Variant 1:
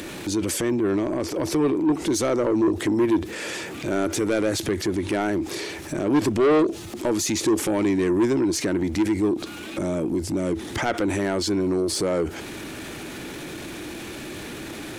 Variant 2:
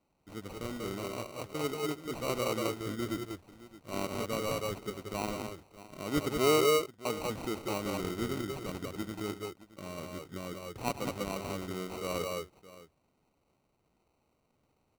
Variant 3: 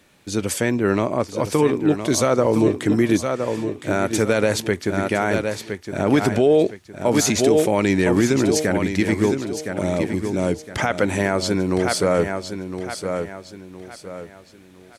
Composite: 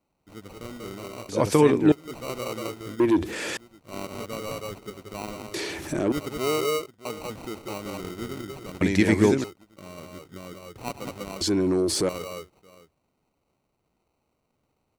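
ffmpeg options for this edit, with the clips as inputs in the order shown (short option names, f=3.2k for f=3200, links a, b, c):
-filter_complex "[2:a]asplit=2[a][b];[0:a]asplit=3[c][d][e];[1:a]asplit=6[f][g][h][i][j][k];[f]atrim=end=1.292[l];[a]atrim=start=1.288:end=1.922[m];[g]atrim=start=1.918:end=3.002[n];[c]atrim=start=2.998:end=3.572[o];[h]atrim=start=3.568:end=5.542[p];[d]atrim=start=5.538:end=6.122[q];[i]atrim=start=6.118:end=8.812[r];[b]atrim=start=8.808:end=9.442[s];[j]atrim=start=9.438:end=11.412[t];[e]atrim=start=11.408:end=12.092[u];[k]atrim=start=12.088[v];[l][m]acrossfade=d=0.004:c1=hsin:c2=hsin[w];[w][n]acrossfade=d=0.004:c1=hsin:c2=hsin[x];[x][o]acrossfade=d=0.004:c1=hsin:c2=hsin[y];[y][p]acrossfade=d=0.004:c1=hsin:c2=hsin[z];[z][q]acrossfade=d=0.004:c1=hsin:c2=hsin[aa];[aa][r]acrossfade=d=0.004:c1=hsin:c2=hsin[ab];[ab][s]acrossfade=d=0.004:c1=hsin:c2=hsin[ac];[ac][t]acrossfade=d=0.004:c1=hsin:c2=hsin[ad];[ad][u]acrossfade=d=0.004:c1=hsin:c2=hsin[ae];[ae][v]acrossfade=d=0.004:c1=hsin:c2=hsin"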